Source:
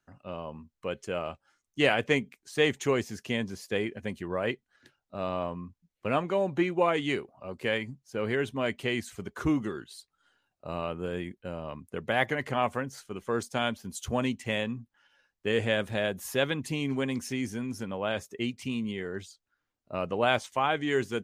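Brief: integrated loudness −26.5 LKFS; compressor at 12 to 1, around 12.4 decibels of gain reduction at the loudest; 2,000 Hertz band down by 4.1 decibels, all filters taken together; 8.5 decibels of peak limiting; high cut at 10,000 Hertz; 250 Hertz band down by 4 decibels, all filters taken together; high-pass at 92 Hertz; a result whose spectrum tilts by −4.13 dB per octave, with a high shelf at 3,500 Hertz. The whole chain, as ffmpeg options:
ffmpeg -i in.wav -af "highpass=92,lowpass=10000,equalizer=frequency=250:width_type=o:gain=-5,equalizer=frequency=2000:width_type=o:gain=-7,highshelf=frequency=3500:gain=6,acompressor=threshold=-33dB:ratio=12,volume=15dB,alimiter=limit=-14dB:level=0:latency=1" out.wav

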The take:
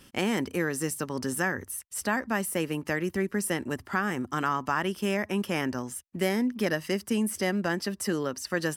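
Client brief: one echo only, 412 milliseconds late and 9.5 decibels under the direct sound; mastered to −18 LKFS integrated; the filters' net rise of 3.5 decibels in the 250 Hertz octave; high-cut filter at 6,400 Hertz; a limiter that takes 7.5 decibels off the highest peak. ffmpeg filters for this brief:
ffmpeg -i in.wav -af "lowpass=6400,equalizer=frequency=250:width_type=o:gain=4.5,alimiter=limit=-19.5dB:level=0:latency=1,aecho=1:1:412:0.335,volume=12dB" out.wav

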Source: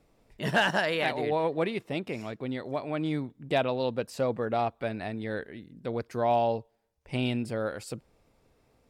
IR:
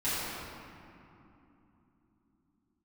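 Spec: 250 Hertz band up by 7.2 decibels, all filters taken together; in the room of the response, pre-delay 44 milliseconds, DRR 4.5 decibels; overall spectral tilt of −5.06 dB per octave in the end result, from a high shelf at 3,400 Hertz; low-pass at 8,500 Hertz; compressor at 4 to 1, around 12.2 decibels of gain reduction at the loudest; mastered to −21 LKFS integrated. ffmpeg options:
-filter_complex "[0:a]lowpass=8500,equalizer=frequency=250:width_type=o:gain=8.5,highshelf=frequency=3400:gain=6,acompressor=threshold=-34dB:ratio=4,asplit=2[link_01][link_02];[1:a]atrim=start_sample=2205,adelay=44[link_03];[link_02][link_03]afir=irnorm=-1:irlink=0,volume=-14.5dB[link_04];[link_01][link_04]amix=inputs=2:normalize=0,volume=14.5dB"

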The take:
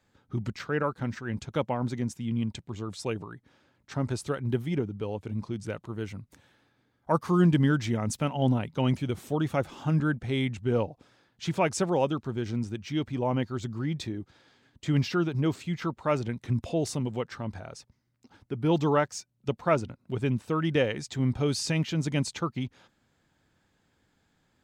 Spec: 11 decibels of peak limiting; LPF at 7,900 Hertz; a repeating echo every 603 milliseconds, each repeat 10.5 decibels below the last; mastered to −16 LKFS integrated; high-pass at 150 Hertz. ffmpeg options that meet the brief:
ffmpeg -i in.wav -af "highpass=150,lowpass=7900,alimiter=limit=-20.5dB:level=0:latency=1,aecho=1:1:603|1206|1809:0.299|0.0896|0.0269,volume=17dB" out.wav

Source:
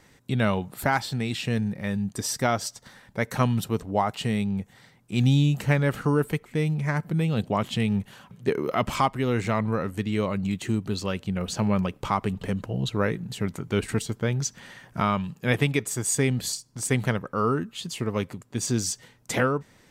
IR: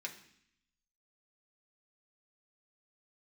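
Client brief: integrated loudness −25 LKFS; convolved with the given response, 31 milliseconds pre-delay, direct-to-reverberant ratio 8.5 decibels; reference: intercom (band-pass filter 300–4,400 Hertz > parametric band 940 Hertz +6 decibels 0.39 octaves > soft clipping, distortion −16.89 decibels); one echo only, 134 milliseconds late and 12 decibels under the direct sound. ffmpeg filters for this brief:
-filter_complex "[0:a]aecho=1:1:134:0.251,asplit=2[link_01][link_02];[1:a]atrim=start_sample=2205,adelay=31[link_03];[link_02][link_03]afir=irnorm=-1:irlink=0,volume=-8dB[link_04];[link_01][link_04]amix=inputs=2:normalize=0,highpass=300,lowpass=4400,equalizer=frequency=940:width_type=o:width=0.39:gain=6,asoftclip=threshold=-13.5dB,volume=5dB"

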